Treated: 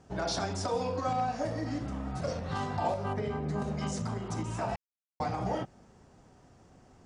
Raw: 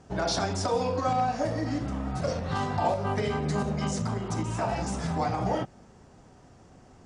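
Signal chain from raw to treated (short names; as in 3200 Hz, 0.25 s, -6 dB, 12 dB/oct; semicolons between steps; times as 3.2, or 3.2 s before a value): 3.13–3.62 high shelf 2200 Hz -11.5 dB; 4.76–5.2 mute; gain -4.5 dB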